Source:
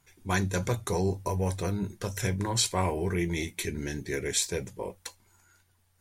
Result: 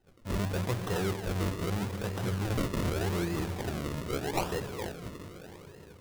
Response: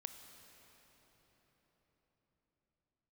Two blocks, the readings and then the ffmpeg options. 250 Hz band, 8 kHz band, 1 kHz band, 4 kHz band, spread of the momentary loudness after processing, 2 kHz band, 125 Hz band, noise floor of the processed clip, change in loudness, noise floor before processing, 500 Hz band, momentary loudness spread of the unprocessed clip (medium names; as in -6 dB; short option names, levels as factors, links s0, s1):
-1.0 dB, -11.5 dB, -2.5 dB, -6.5 dB, 13 LU, -3.5 dB, -1.0 dB, -53 dBFS, -3.0 dB, -68 dBFS, -2.5 dB, 9 LU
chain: -filter_complex "[1:a]atrim=start_sample=2205[s0];[0:a][s0]afir=irnorm=-1:irlink=0,acrusher=samples=38:mix=1:aa=0.000001:lfo=1:lforange=38:lforate=0.82,aeval=exprs='0.106*(cos(1*acos(clip(val(0)/0.106,-1,1)))-cos(1*PI/2))+0.00944*(cos(5*acos(clip(val(0)/0.106,-1,1)))-cos(5*PI/2))':c=same"